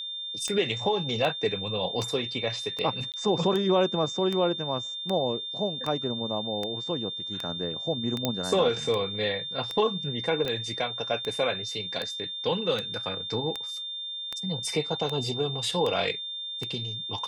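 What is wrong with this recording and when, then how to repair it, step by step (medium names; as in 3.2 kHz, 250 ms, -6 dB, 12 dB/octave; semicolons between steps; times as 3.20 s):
tick 78 rpm -17 dBFS
whine 3.6 kHz -33 dBFS
3.12–3.14 s: dropout 18 ms
8.25 s: pop -10 dBFS
10.45 s: dropout 2.3 ms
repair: de-click; band-stop 3.6 kHz, Q 30; interpolate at 3.12 s, 18 ms; interpolate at 10.45 s, 2.3 ms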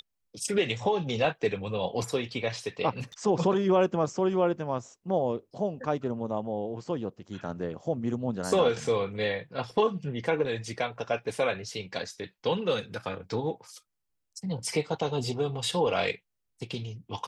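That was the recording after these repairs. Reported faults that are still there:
nothing left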